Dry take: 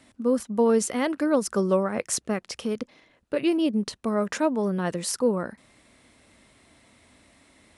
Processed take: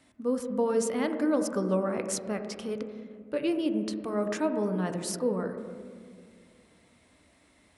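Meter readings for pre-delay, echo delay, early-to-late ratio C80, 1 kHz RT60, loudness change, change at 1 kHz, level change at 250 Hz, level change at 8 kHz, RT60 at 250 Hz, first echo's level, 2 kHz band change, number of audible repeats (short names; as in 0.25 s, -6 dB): 7 ms, none, 9.5 dB, 1.8 s, -4.5 dB, -5.0 dB, -4.0 dB, -6.0 dB, 2.7 s, none, -5.5 dB, none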